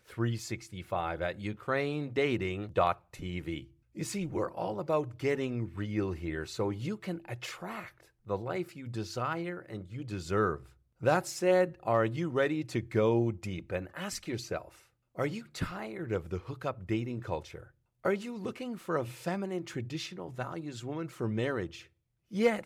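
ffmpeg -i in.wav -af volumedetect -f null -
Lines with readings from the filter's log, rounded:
mean_volume: -33.7 dB
max_volume: -14.5 dB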